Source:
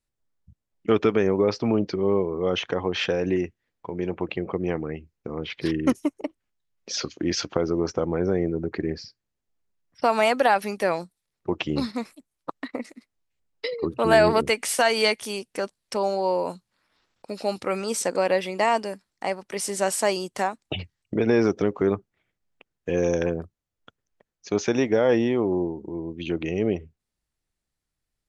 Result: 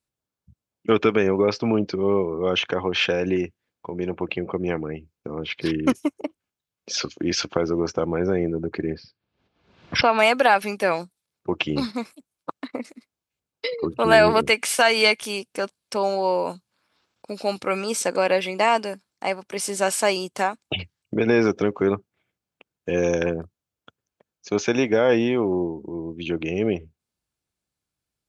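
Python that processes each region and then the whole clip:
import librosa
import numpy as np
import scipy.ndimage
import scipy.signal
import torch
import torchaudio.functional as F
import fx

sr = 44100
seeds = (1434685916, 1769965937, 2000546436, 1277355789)

y = fx.chain(x, sr, fx.block_float(bits=7),
    fx.lowpass(hz=4000.0, slope=24),
    fx.pre_swell(db_per_s=70.0), at=(8.94, 10.19))
y = scipy.signal.sosfilt(scipy.signal.butter(2, 74.0, 'highpass', fs=sr, output='sos'), y)
y = fx.notch(y, sr, hz=1900.0, q=8.9)
y = fx.dynamic_eq(y, sr, hz=2200.0, q=0.85, threshold_db=-39.0, ratio=4.0, max_db=6)
y = y * librosa.db_to_amplitude(1.0)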